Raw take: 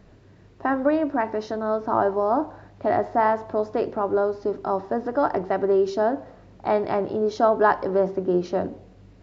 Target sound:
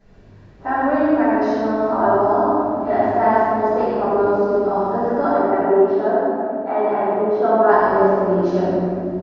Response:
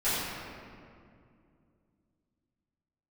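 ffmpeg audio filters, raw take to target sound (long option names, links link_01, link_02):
-filter_complex "[0:a]asplit=3[link_01][link_02][link_03];[link_01]afade=type=out:start_time=5.29:duration=0.02[link_04];[link_02]highpass=240,lowpass=2100,afade=type=in:start_time=5.29:duration=0.02,afade=type=out:start_time=7.67:duration=0.02[link_05];[link_03]afade=type=in:start_time=7.67:duration=0.02[link_06];[link_04][link_05][link_06]amix=inputs=3:normalize=0,aecho=1:1:89:0.562[link_07];[1:a]atrim=start_sample=2205[link_08];[link_07][link_08]afir=irnorm=-1:irlink=0,volume=-7.5dB"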